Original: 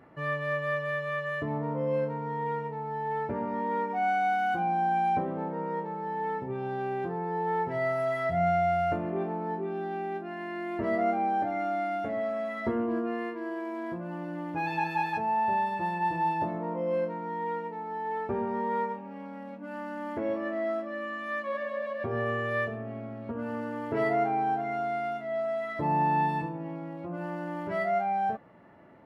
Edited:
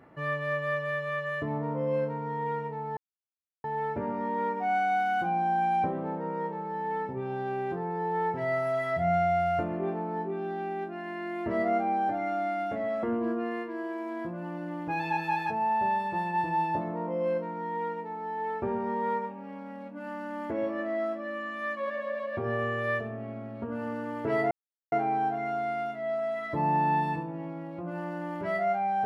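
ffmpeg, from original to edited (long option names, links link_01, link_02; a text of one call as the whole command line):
ffmpeg -i in.wav -filter_complex "[0:a]asplit=4[link_01][link_02][link_03][link_04];[link_01]atrim=end=2.97,asetpts=PTS-STARTPTS,afade=type=out:start_time=2.966:duration=0.004:curve=hsin,apad=pad_dur=0.67[link_05];[link_02]atrim=start=2.97:end=12.362,asetpts=PTS-STARTPTS,afade=type=in:duration=0.004:curve=hsin[link_06];[link_03]atrim=start=12.698:end=24.18,asetpts=PTS-STARTPTS,afade=type=out:start_time=11.478:duration=0.004:curve=hsin,apad=pad_dur=0.41[link_07];[link_04]atrim=start=24.18,asetpts=PTS-STARTPTS,afade=type=in:duration=0.004:curve=hsin[link_08];[link_05][link_06]concat=n=2:v=0:a=1[link_09];[link_07][link_08]concat=n=2:v=0:a=1[link_10];[link_09][link_10]acrossfade=duration=0.004:curve1=hsin:curve2=hsin" out.wav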